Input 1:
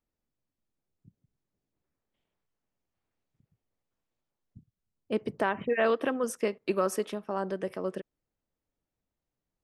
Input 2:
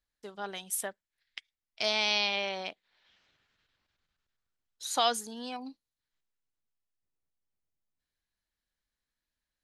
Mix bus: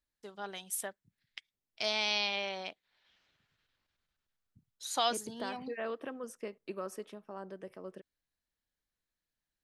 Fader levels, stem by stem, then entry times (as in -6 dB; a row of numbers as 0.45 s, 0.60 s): -12.5 dB, -3.5 dB; 0.00 s, 0.00 s